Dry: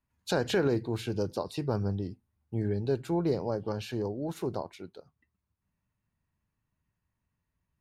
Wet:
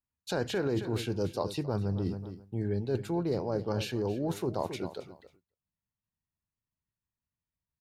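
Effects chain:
repeating echo 271 ms, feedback 23%, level −16 dB
noise gate with hold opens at −53 dBFS
reversed playback
downward compressor, threshold −36 dBFS, peak gain reduction 13 dB
reversed playback
level +8 dB

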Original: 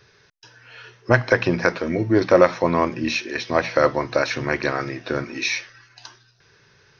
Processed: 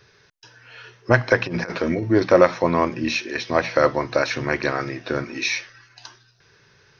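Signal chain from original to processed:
0:01.46–0:02.03: compressor whose output falls as the input rises −23 dBFS, ratio −0.5

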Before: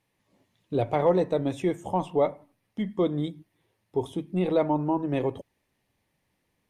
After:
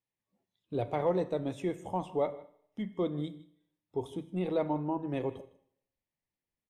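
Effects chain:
noise reduction from a noise print of the clip's start 13 dB
on a send: single-tap delay 158 ms −20 dB
on the sum: four-comb reverb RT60 0.71 s, combs from 26 ms, DRR 15.5 dB
level −7 dB

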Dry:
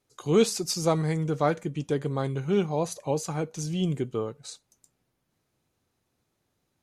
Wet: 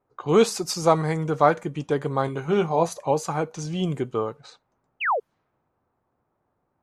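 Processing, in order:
0:05.00–0:05.20: sound drawn into the spectrogram fall 400–3,200 Hz −30 dBFS
parametric band 1,000 Hz +10 dB 1.9 octaves
low-pass that shuts in the quiet parts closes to 1,200 Hz, open at −24 dBFS
0:02.26–0:02.89: double-tracking delay 18 ms −8 dB

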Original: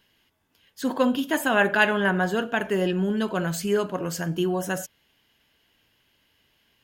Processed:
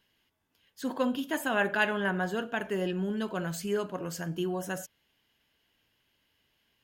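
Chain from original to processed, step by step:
0:03.00–0:03.53: surface crackle 17 per second → 47 per second −42 dBFS
level −7 dB

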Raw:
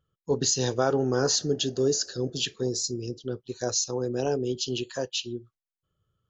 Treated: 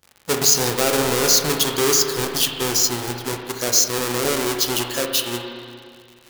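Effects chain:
each half-wave held at its own peak
bass and treble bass −7 dB, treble +9 dB
in parallel at +2 dB: brickwall limiter −10 dBFS, peak gain reduction 9 dB
on the sum: surface crackle 120 per second −29 dBFS
spring reverb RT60 2.2 s, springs 33/59 ms, chirp 45 ms, DRR 3 dB
level −4 dB

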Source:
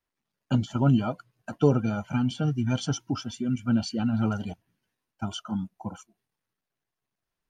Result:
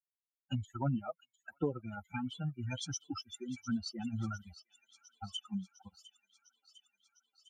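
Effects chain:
spectral dynamics exaggerated over time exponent 3
downward compressor 3 to 1, threshold −33 dBFS, peak gain reduction 11.5 dB
on a send: delay with a high-pass on its return 704 ms, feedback 71%, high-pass 3,200 Hz, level −13.5 dB

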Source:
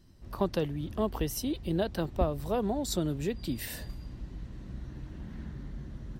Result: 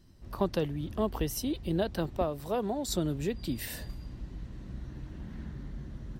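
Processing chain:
0:02.17–0:02.89: low-shelf EQ 130 Hz −11 dB

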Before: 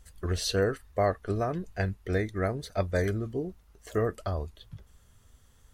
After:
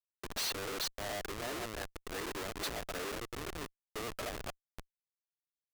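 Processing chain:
delay that plays each chunk backwards 219 ms, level −8 dB
output level in coarse steps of 22 dB
phase shifter 1.3 Hz, delay 1.6 ms, feedback 47%
Butterworth high-pass 270 Hz 96 dB per octave
high-shelf EQ 2,800 Hz +2.5 dB
comparator with hysteresis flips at −46 dBFS
low-shelf EQ 480 Hz −10.5 dB
level +13.5 dB

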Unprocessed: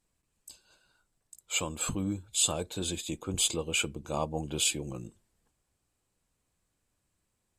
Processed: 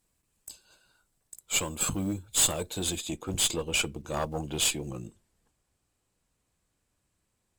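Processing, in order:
one scale factor per block 7 bits
high-shelf EQ 11,000 Hz +9 dB, from 0:02.99 −2.5 dB
tube saturation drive 22 dB, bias 0.7
level +6 dB

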